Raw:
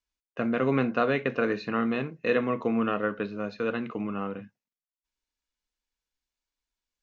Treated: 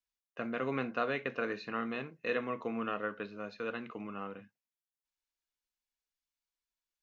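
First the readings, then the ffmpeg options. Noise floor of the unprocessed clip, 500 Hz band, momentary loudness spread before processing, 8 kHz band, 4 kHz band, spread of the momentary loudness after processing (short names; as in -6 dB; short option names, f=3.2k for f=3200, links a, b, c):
under -85 dBFS, -9.0 dB, 8 LU, n/a, -5.5 dB, 9 LU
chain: -af "lowshelf=f=470:g=-7.5,volume=-5.5dB"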